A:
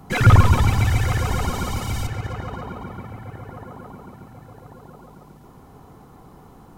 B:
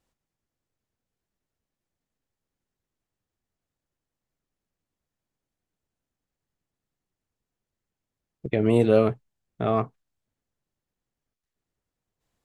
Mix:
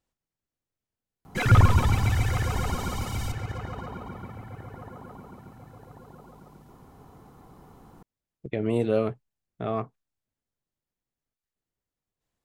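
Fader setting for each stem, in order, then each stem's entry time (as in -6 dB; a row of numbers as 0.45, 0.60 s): -5.0, -5.5 dB; 1.25, 0.00 s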